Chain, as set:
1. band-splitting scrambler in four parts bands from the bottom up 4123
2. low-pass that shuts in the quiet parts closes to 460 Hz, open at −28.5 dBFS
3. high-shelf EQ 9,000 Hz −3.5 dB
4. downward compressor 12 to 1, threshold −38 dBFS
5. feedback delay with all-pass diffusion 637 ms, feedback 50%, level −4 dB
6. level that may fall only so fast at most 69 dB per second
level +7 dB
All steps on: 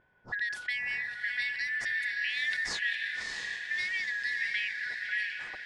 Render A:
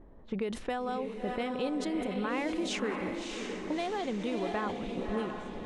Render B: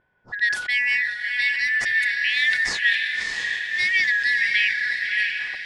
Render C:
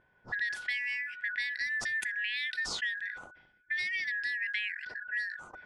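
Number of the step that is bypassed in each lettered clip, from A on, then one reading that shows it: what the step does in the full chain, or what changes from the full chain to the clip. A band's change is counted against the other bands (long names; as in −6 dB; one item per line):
1, 500 Hz band +28.0 dB
4, average gain reduction 8.0 dB
5, change in momentary loudness spread +2 LU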